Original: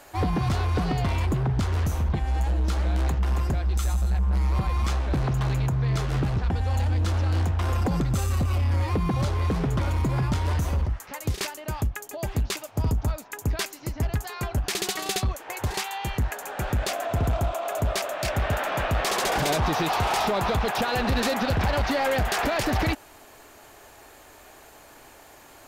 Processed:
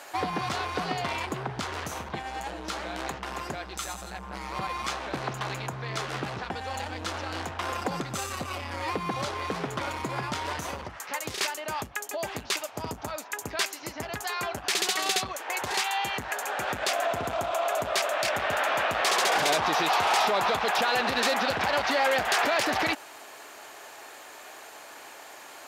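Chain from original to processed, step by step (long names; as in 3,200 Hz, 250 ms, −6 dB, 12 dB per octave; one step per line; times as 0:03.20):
brickwall limiter −23 dBFS, peak gain reduction 3.5 dB
meter weighting curve A
level +5 dB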